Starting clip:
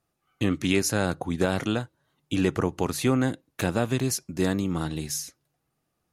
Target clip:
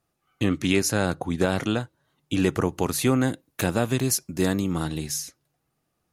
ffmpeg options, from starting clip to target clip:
-filter_complex "[0:a]asettb=1/sr,asplit=3[a][b][c];[a]atrim=end=2.404[d];[b]atrim=start=2.4:end=4.98,asetpts=PTS-STARTPTS,afade=t=in:d=0.004:c=qsin,afade=t=out:st=2.576:d=0.004:c=qsin,highshelf=f=9.5k:g=8.5[e];[c]atrim=start=4.976[f];[d][e]acrossfade=d=0.004:c1=hsin:c2=qsin[g];[g][f]acrossfade=d=0.004:c1=qsin:c2=hsin,volume=1.5dB"

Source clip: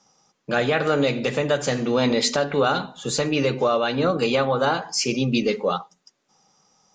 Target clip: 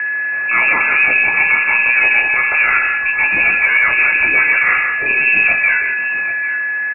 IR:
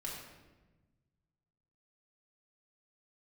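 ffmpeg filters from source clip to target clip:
-filter_complex "[0:a]aeval=exprs='val(0)+0.5*0.0224*sgn(val(0))':c=same,highpass=f=120:w=0.5412,highpass=f=120:w=1.3066,asplit=2[a][b];[b]alimiter=limit=-15.5dB:level=0:latency=1,volume=1.5dB[c];[a][c]amix=inputs=2:normalize=0,acontrast=86,volume=6.5dB,asoftclip=hard,volume=-6.5dB,flanger=delay=17:depth=8:speed=0.88,asplit=2[d][e];[e]aecho=0:1:135|174|791:0.266|0.316|0.237[f];[d][f]amix=inputs=2:normalize=0,aeval=exprs='val(0)+0.178*sin(2*PI*1100*n/s)':c=same,lowpass=f=2.4k:t=q:w=0.5098,lowpass=f=2.4k:t=q:w=0.6013,lowpass=f=2.4k:t=q:w=0.9,lowpass=f=2.4k:t=q:w=2.563,afreqshift=-2800,volume=-1.5dB"

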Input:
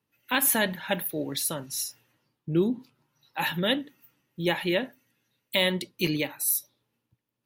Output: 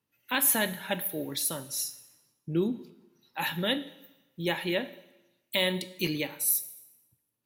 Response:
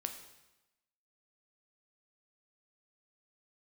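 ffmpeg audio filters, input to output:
-filter_complex "[0:a]asplit=2[a][b];[1:a]atrim=start_sample=2205,highshelf=f=4.1k:g=7[c];[b][c]afir=irnorm=-1:irlink=0,volume=-3dB[d];[a][d]amix=inputs=2:normalize=0,volume=-7.5dB"

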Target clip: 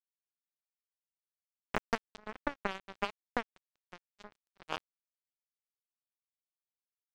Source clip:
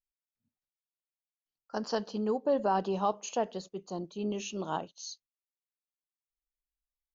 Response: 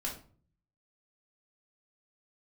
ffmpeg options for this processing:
-af "acompressor=threshold=-30dB:ratio=8,acrusher=bits=3:mix=0:aa=0.5,volume=6.5dB"

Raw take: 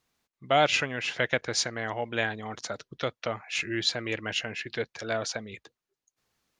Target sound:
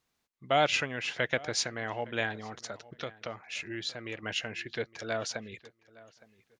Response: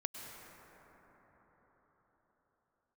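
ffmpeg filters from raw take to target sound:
-filter_complex "[0:a]asettb=1/sr,asplit=3[a][b][c];[a]atrim=end=2.364[d];[b]atrim=start=2.36:end=4.23,asetpts=PTS-STARTPTS,afade=t=in:d=0.004:c=qsin,afade=t=out:st=1.866:d=0.004:c=qsin,acompressor=threshold=-35dB:ratio=2[e];[c]atrim=start=4.226[f];[d][e]acrossfade=d=0.004:c1=hsin:c2=qsin[g];[g][f]acrossfade=d=0.004:c1=qsin:c2=hsin,asplit=2[h][i];[i]adelay=863,lowpass=f=2.6k:p=1,volume=-20.5dB,asplit=2[j][k];[k]adelay=863,lowpass=f=2.6k:p=1,volume=0.25[l];[j][l]amix=inputs=2:normalize=0[m];[h][m]amix=inputs=2:normalize=0,volume=-3dB"

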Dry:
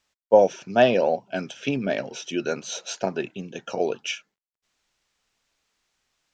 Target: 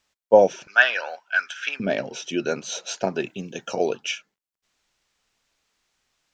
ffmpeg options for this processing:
-filter_complex "[0:a]asettb=1/sr,asplit=3[a][b][c];[a]atrim=end=0.674[d];[b]atrim=start=0.67:end=1.8,asetpts=PTS-STARTPTS,afade=t=in:d=0.004:c=qsin,afade=t=out:st=1.126:d=0.004:c=qsin,highpass=f=1.5k:t=q:w=5.4[e];[c]atrim=start=1.796[f];[d][e]acrossfade=d=0.004:c1=hsin:c2=qsin[g];[g][f]acrossfade=d=0.004:c1=qsin:c2=hsin,asettb=1/sr,asplit=3[h][i][j];[h]atrim=end=3.154[k];[i]atrim=start=3.15:end=3.96,asetpts=PTS-STARTPTS,afade=t=in:d=0.004:c=qsin,afade=t=out:st=0.806:d=0.004:c=qsin,highshelf=f=6.8k:g=11[l];[j]atrim=start=3.956[m];[k][l]acrossfade=d=0.004:c1=hsin:c2=qsin[n];[n][m]acrossfade=d=0.004:c1=qsin:c2=hsin,volume=1.5dB"

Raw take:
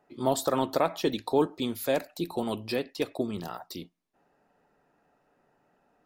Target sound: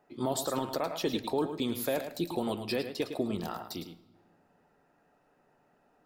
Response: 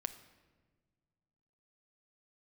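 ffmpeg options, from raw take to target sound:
-filter_complex "[0:a]alimiter=limit=-20.5dB:level=0:latency=1:release=75,asplit=2[a][b];[1:a]atrim=start_sample=2205,adelay=107[c];[b][c]afir=irnorm=-1:irlink=0,volume=-7.5dB[d];[a][d]amix=inputs=2:normalize=0"

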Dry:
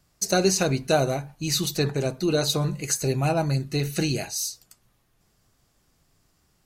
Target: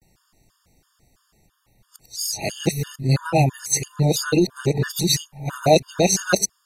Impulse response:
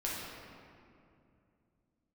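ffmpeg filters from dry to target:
-af "areverse,afftfilt=real='re*gt(sin(2*PI*3*pts/sr)*(1-2*mod(floor(b*sr/1024/920),2)),0)':imag='im*gt(sin(2*PI*3*pts/sr)*(1-2*mod(floor(b*sr/1024/920),2)),0)':win_size=1024:overlap=0.75,volume=7dB"

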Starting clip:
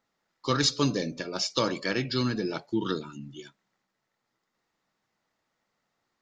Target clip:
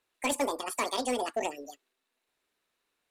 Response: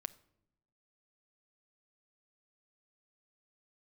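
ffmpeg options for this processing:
-filter_complex "[0:a]acrossover=split=4300[a][b];[b]acompressor=threshold=-48dB:ratio=4:attack=1:release=60[c];[a][c]amix=inputs=2:normalize=0,asetrate=88200,aresample=44100,asplit=2[d][e];[e]aeval=exprs='0.0841*(abs(mod(val(0)/0.0841+3,4)-2)-1)':c=same,volume=-5dB[f];[d][f]amix=inputs=2:normalize=0,volume=-5.5dB"

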